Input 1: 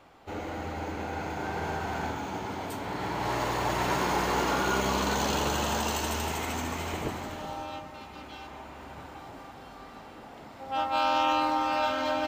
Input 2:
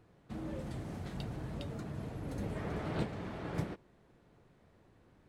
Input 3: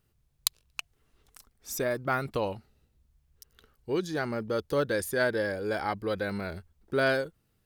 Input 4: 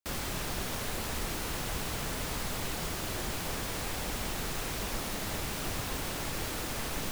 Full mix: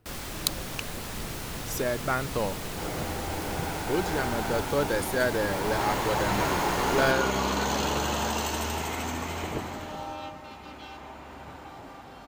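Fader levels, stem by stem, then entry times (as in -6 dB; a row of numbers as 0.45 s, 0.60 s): +0.5 dB, -2.0 dB, +0.5 dB, -1.5 dB; 2.50 s, 0.00 s, 0.00 s, 0.00 s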